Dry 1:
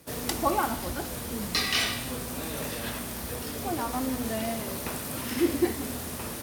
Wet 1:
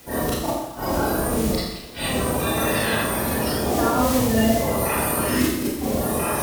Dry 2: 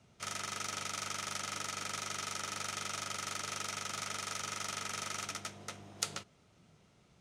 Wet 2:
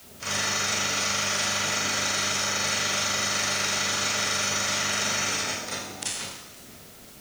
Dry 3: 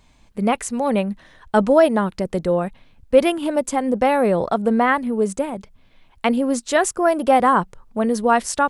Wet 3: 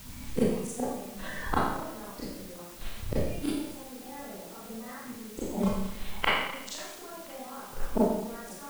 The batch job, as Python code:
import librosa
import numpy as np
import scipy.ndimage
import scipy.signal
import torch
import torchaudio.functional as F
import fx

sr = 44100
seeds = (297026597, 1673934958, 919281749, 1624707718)

p1 = fx.spec_quant(x, sr, step_db=30)
p2 = fx.low_shelf(p1, sr, hz=140.0, db=2.5)
p3 = fx.level_steps(p2, sr, step_db=22)
p4 = p2 + (p3 * 10.0 ** (1.0 / 20.0))
p5 = fx.gate_flip(p4, sr, shuts_db=-15.0, range_db=-40)
p6 = fx.rev_schroeder(p5, sr, rt60_s=0.91, comb_ms=28, drr_db=-9.5)
p7 = fx.dmg_noise_colour(p6, sr, seeds[0], colour='white', level_db=-50.0)
p8 = fx.quant_float(p7, sr, bits=4)
y = fx.echo_warbled(p8, sr, ms=510, feedback_pct=61, rate_hz=2.8, cents=202, wet_db=-24)